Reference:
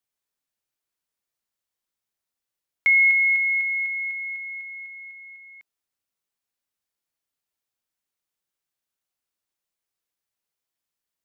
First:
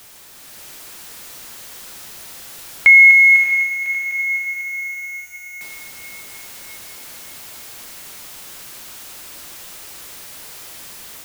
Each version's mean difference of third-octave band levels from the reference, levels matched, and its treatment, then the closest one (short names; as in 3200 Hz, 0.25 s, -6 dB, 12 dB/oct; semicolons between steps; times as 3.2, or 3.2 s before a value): 5.0 dB: zero-crossing step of -40.5 dBFS; AGC gain up to 5.5 dB; diffused feedback echo 0.625 s, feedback 50%, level -6 dB; gain +4 dB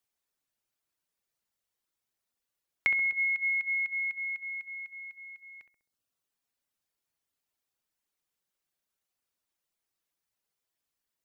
1.5 dB: reverb removal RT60 0.72 s; compressor, threshold -27 dBFS, peak gain reduction 11 dB; on a send: darkening echo 66 ms, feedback 67%, low-pass 1200 Hz, level -7 dB; on the sum: gain +1.5 dB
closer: second